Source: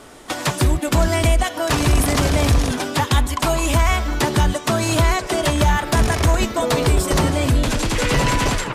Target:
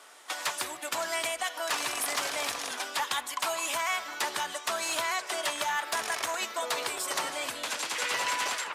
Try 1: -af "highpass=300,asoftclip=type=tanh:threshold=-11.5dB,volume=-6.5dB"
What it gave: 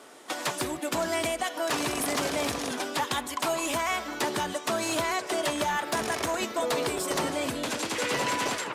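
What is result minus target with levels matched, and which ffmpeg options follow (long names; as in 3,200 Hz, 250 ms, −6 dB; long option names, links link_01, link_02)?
250 Hz band +13.5 dB
-af "highpass=880,asoftclip=type=tanh:threshold=-11.5dB,volume=-6.5dB"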